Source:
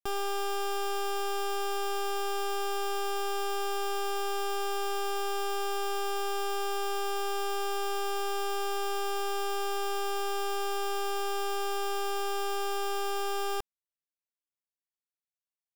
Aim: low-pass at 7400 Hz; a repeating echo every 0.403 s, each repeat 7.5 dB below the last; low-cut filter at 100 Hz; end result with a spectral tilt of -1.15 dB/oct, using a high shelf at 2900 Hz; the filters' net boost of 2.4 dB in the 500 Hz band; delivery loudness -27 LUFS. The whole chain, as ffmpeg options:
-af "highpass=100,lowpass=7.4k,equalizer=f=500:t=o:g=3.5,highshelf=f=2.9k:g=-4.5,aecho=1:1:403|806|1209|1612|2015:0.422|0.177|0.0744|0.0312|0.0131,volume=5.5dB"

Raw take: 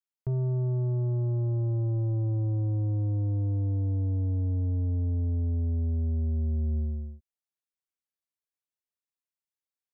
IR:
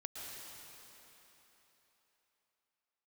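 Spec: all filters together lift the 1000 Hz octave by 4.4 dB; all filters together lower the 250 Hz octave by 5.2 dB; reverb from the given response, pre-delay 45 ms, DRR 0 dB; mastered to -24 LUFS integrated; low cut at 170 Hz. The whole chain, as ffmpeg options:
-filter_complex "[0:a]highpass=170,equalizer=f=250:t=o:g=-6,equalizer=f=1k:t=o:g=6.5,asplit=2[a][b];[1:a]atrim=start_sample=2205,adelay=45[c];[b][c]afir=irnorm=-1:irlink=0,volume=1dB[d];[a][d]amix=inputs=2:normalize=0,volume=11dB"

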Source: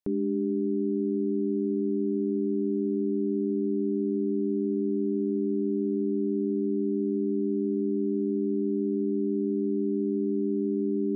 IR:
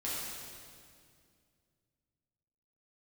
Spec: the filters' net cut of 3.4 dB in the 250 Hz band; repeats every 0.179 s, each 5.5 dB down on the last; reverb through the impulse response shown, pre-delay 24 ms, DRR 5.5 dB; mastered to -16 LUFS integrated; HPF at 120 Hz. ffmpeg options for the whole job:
-filter_complex "[0:a]highpass=120,equalizer=f=250:t=o:g=-4,aecho=1:1:179|358|537|716|895|1074|1253:0.531|0.281|0.149|0.079|0.0419|0.0222|0.0118,asplit=2[a][b];[1:a]atrim=start_sample=2205,adelay=24[c];[b][c]afir=irnorm=-1:irlink=0,volume=-9.5dB[d];[a][d]amix=inputs=2:normalize=0,volume=13dB"

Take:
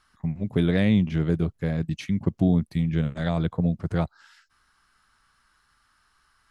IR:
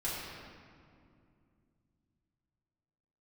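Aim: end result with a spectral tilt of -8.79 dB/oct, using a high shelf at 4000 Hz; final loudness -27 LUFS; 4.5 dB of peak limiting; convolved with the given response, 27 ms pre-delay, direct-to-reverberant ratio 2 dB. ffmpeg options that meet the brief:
-filter_complex "[0:a]highshelf=f=4k:g=-3.5,alimiter=limit=-13.5dB:level=0:latency=1,asplit=2[a][b];[1:a]atrim=start_sample=2205,adelay=27[c];[b][c]afir=irnorm=-1:irlink=0,volume=-7dB[d];[a][d]amix=inputs=2:normalize=0,volume=-4dB"

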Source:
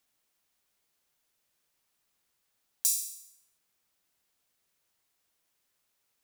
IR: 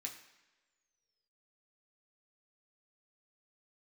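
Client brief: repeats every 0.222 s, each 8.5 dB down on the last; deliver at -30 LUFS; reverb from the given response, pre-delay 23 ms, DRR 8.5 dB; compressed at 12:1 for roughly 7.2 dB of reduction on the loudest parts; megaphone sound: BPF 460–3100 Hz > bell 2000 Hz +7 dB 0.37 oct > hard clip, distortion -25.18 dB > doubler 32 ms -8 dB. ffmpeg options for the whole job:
-filter_complex "[0:a]acompressor=threshold=-29dB:ratio=12,aecho=1:1:222|444|666|888:0.376|0.143|0.0543|0.0206,asplit=2[a][b];[1:a]atrim=start_sample=2205,adelay=23[c];[b][c]afir=irnorm=-1:irlink=0,volume=-6dB[d];[a][d]amix=inputs=2:normalize=0,highpass=460,lowpass=3.1k,equalizer=f=2k:t=o:w=0.37:g=7,asoftclip=type=hard:threshold=-34.5dB,asplit=2[e][f];[f]adelay=32,volume=-8dB[g];[e][g]amix=inputs=2:normalize=0,volume=23.5dB"

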